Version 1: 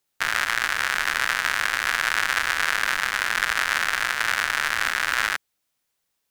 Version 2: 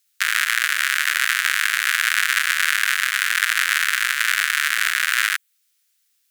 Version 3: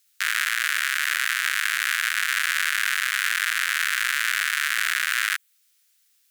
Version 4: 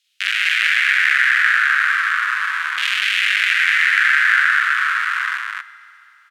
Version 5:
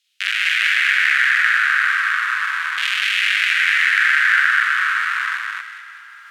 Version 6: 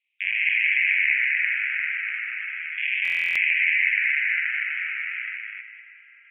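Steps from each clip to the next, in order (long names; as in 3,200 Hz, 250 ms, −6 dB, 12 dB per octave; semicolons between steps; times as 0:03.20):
dynamic equaliser 5,200 Hz, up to −6 dB, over −44 dBFS, Q 1.4; inverse Chebyshev high-pass filter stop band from 660 Hz, stop band 40 dB; high-shelf EQ 2,200 Hz +9.5 dB; level +1 dB
brickwall limiter −12.5 dBFS, peak gain reduction 11 dB; level +2.5 dB
auto-filter band-pass saw down 0.36 Hz 850–3,100 Hz; loudspeakers that aren't time-aligned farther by 15 metres −1 dB, 85 metres −1 dB; convolution reverb RT60 3.2 s, pre-delay 4 ms, DRR 15 dB; level +8 dB
reversed playback; upward compression, threshold −32 dBFS; reversed playback; delay with a high-pass on its return 201 ms, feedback 50%, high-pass 1,800 Hz, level −8 dB; level −1 dB
flat-topped band-pass 2,300 Hz, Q 4; gate on every frequency bin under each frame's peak −30 dB strong; buffer that repeats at 0:03.03, samples 1,024, times 13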